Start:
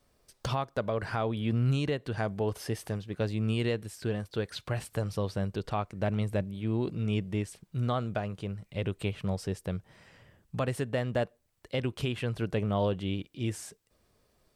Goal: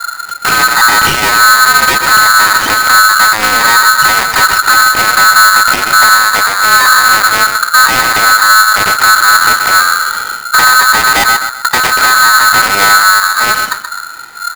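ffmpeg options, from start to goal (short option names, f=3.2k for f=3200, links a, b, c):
-filter_complex "[0:a]lowpass=3.4k,aemphasis=mode=reproduction:type=riaa,bandreject=f=60:t=h:w=6,bandreject=f=120:t=h:w=6,bandreject=f=180:t=h:w=6,bandreject=f=240:t=h:w=6,aecho=1:1:2:0.34,asoftclip=type=tanh:threshold=-33.5dB,acrossover=split=590[a][b];[a]aeval=exprs='val(0)*(1-0.7/2+0.7/2*cos(2*PI*1.3*n/s))':c=same[c];[b]aeval=exprs='val(0)*(1-0.7/2-0.7/2*cos(2*PI*1.3*n/s))':c=same[d];[c][d]amix=inputs=2:normalize=0,asplit=2[e][f];[f]adelay=128,lowpass=f=1.4k:p=1,volume=-7.5dB,asplit=2[g][h];[h]adelay=128,lowpass=f=1.4k:p=1,volume=0.39,asplit=2[i][j];[j]adelay=128,lowpass=f=1.4k:p=1,volume=0.39,asplit=2[k][l];[l]adelay=128,lowpass=f=1.4k:p=1,volume=0.39[m];[g][i][k][m]amix=inputs=4:normalize=0[n];[e][n]amix=inputs=2:normalize=0,alimiter=level_in=35dB:limit=-1dB:release=50:level=0:latency=1,aeval=exprs='val(0)*sgn(sin(2*PI*1400*n/s))':c=same,volume=-1dB"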